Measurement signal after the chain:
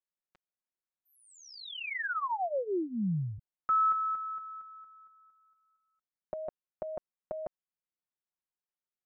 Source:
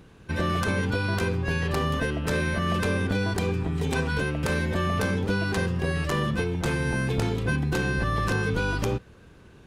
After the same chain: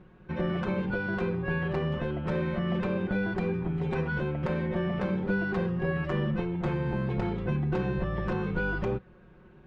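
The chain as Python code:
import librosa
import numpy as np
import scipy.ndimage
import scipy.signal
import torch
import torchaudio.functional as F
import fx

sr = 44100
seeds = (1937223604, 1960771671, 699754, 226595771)

y = scipy.signal.sosfilt(scipy.signal.butter(2, 1900.0, 'lowpass', fs=sr, output='sos'), x)
y = y + 0.76 * np.pad(y, (int(5.5 * sr / 1000.0), 0))[:len(y)]
y = y * librosa.db_to_amplitude(-4.5)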